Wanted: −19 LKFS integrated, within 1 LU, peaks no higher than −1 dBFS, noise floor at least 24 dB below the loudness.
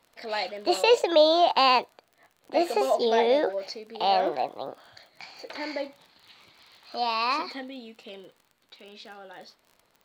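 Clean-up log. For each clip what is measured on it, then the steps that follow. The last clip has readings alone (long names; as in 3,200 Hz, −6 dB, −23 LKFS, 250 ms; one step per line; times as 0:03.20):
crackle rate 36 per second; integrated loudness −24.5 LKFS; sample peak −7.5 dBFS; target loudness −19.0 LKFS
→ click removal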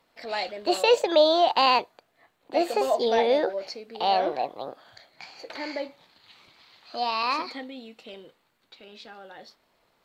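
crackle rate 0 per second; integrated loudness −24.5 LKFS; sample peak −7.5 dBFS; target loudness −19.0 LKFS
→ level +5.5 dB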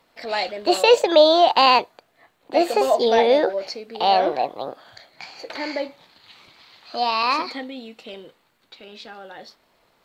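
integrated loudness −19.0 LKFS; sample peak −2.0 dBFS; background noise floor −64 dBFS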